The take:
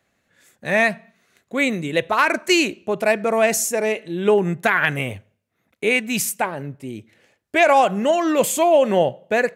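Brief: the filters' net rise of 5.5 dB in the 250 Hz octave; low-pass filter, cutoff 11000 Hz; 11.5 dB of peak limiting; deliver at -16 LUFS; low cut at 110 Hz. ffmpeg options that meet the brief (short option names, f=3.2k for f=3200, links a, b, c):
-af "highpass=110,lowpass=11k,equalizer=f=250:t=o:g=7.5,volume=7dB,alimiter=limit=-6.5dB:level=0:latency=1"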